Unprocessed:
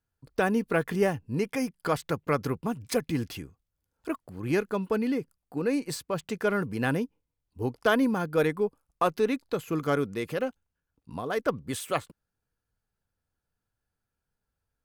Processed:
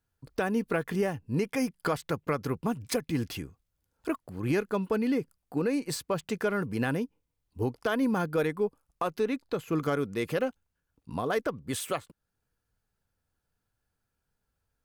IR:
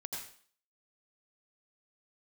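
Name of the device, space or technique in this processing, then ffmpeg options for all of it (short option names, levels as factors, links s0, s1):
stacked limiters: -filter_complex "[0:a]alimiter=limit=0.141:level=0:latency=1:release=305,alimiter=limit=0.0841:level=0:latency=1:release=476,asettb=1/sr,asplit=3[s0][s1][s2];[s0]atrim=end=9.234[s3];[s1]atrim=start=9.23:end=9.83,asetpts=PTS-STARTPTS,afade=t=in:d=0.004:c=qsin,afade=t=out:st=0.596:d=0.004:c=qsin,highshelf=f=5300:g=-5[s4];[s2]atrim=start=9.826[s5];[s3][s4]acrossfade=d=0.004:c1=hsin:c2=qsin[s6];[s6][s5]acrossfade=d=0.004:c1=qsin:c2=hsin,volume=1.41"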